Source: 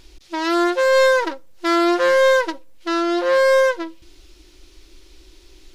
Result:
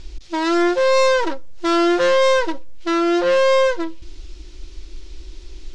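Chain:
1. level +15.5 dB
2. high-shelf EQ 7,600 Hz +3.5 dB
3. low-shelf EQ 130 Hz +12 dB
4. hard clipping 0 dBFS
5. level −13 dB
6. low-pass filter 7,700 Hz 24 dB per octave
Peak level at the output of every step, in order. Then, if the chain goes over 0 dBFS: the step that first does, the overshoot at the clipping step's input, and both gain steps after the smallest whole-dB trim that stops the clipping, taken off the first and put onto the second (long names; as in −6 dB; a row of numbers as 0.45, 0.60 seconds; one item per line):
+6.5, +7.5, +8.5, 0.0, −13.0, −11.0 dBFS
step 1, 8.5 dB
step 1 +6.5 dB, step 5 −4 dB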